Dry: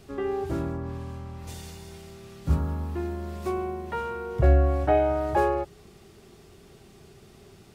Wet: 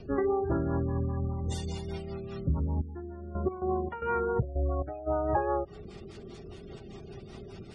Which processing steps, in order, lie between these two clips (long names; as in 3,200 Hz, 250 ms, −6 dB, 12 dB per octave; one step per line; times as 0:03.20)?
rotating-speaker cabinet horn 5 Hz
gate on every frequency bin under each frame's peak −25 dB strong
dynamic equaliser 1,100 Hz, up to +5 dB, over −45 dBFS, Q 1.1
downward compressor 12 to 1, threshold −33 dBFS, peak gain reduction 18 dB
hum removal 145.7 Hz, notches 12
0:02.69–0:05.06: gate pattern "xxx.xx....x.xx." 112 BPM −12 dB
level +8.5 dB